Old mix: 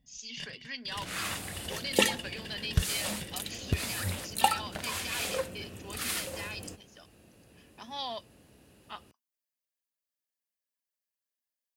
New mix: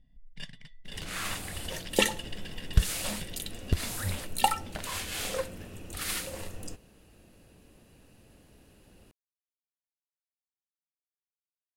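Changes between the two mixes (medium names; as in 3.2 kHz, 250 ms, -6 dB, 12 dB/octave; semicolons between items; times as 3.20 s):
speech: muted; master: remove high-pass 72 Hz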